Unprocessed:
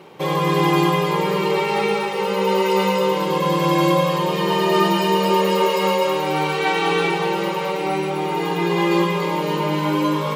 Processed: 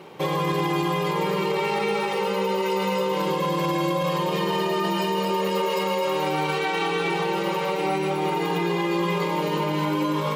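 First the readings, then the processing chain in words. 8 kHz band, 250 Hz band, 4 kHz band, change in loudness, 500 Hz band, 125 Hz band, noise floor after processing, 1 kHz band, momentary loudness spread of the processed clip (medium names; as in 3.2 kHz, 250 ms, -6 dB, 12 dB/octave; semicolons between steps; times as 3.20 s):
-5.0 dB, -5.0 dB, -5.0 dB, -5.0 dB, -5.0 dB, -5.0 dB, -26 dBFS, -5.0 dB, 1 LU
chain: peak limiter -16 dBFS, peak gain reduction 10 dB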